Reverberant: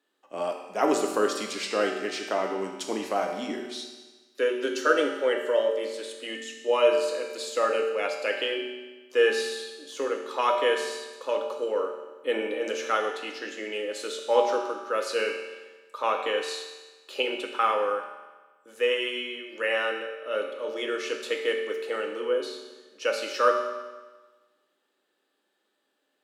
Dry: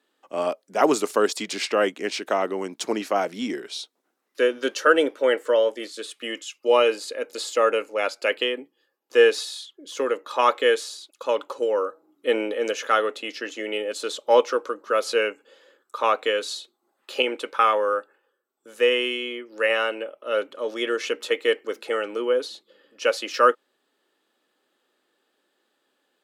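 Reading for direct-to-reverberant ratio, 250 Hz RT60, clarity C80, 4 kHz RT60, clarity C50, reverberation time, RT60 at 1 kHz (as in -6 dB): 1.5 dB, 1.3 s, 6.5 dB, 1.3 s, 4.5 dB, 1.3 s, 1.3 s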